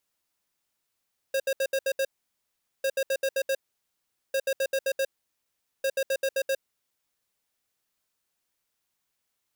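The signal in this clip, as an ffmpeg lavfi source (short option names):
-f lavfi -i "aevalsrc='0.0531*(2*lt(mod(539*t,1),0.5)-1)*clip(min(mod(mod(t,1.5),0.13),0.06-mod(mod(t,1.5),0.13))/0.005,0,1)*lt(mod(t,1.5),0.78)':d=6:s=44100"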